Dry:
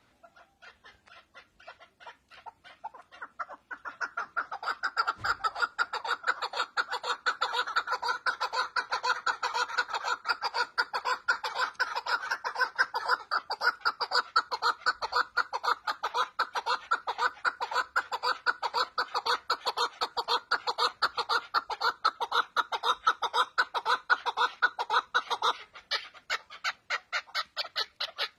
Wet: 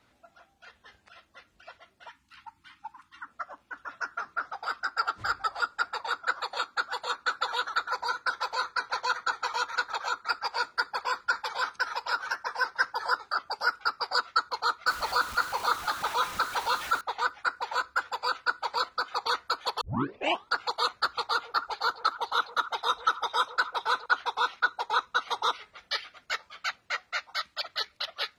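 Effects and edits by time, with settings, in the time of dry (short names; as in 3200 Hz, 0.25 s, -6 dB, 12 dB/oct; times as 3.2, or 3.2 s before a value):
2.08–3.27 spectral delete 350–810 Hz
14.87–17.01 zero-crossing step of -33 dBFS
19.81 tape start 0.71 s
21.25–24.06 delay with a stepping band-pass 0.137 s, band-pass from 530 Hz, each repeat 1.4 oct, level -10.5 dB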